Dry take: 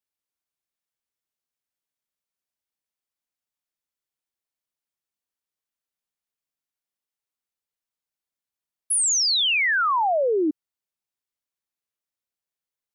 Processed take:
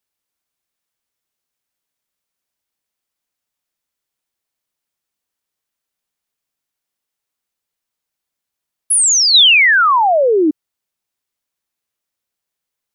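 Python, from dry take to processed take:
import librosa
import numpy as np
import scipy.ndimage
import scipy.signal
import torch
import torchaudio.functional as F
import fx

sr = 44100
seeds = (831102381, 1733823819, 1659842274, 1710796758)

y = fx.high_shelf(x, sr, hz=3900.0, db=10.5, at=(9.34, 9.98))
y = y * librosa.db_to_amplitude(9.0)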